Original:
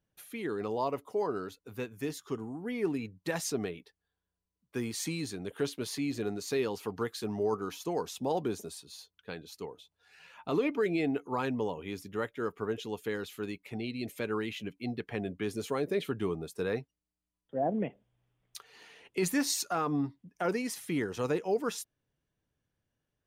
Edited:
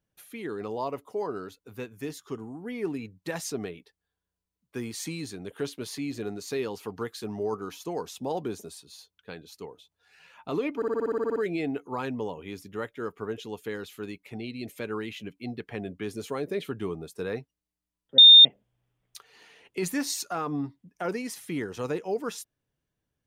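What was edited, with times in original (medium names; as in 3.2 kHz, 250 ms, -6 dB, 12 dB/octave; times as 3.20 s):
10.76 s: stutter 0.06 s, 11 plays
17.58–17.85 s: bleep 3.64 kHz -8 dBFS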